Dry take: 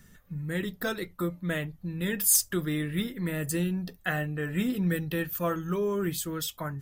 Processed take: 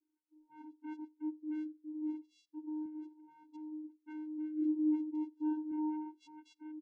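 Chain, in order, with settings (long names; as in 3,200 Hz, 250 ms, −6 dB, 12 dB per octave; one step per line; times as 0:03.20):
adaptive Wiener filter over 15 samples
high-shelf EQ 4,000 Hz +11.5 dB
transient designer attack −6 dB, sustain −1 dB
0:02.08–0:04.35: downward compressor 16 to 1, threshold −30 dBFS, peak gain reduction 21 dB
all-pass dispersion highs, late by 48 ms, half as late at 2,300 Hz
channel vocoder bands 4, square 307 Hz
auto-filter notch saw up 0.35 Hz 200–2,500 Hz
repeating echo 91 ms, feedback 39%, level −22.5 dB
every bin expanded away from the loudest bin 1.5 to 1
level −2 dB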